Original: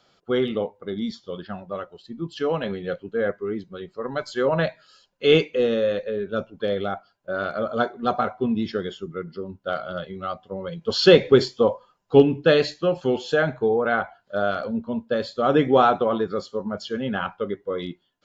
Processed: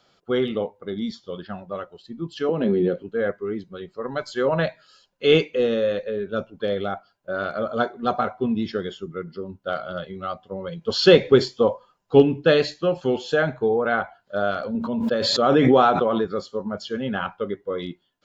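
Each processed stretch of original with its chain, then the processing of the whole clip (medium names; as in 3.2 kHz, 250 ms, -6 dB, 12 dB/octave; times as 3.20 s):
2.49–3.03 s: compression 5:1, threshold -29 dBFS + small resonant body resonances 240/350 Hz, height 18 dB, ringing for 40 ms
14.75–16.25 s: high-pass 100 Hz + swell ahead of each attack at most 25 dB/s
whole clip: none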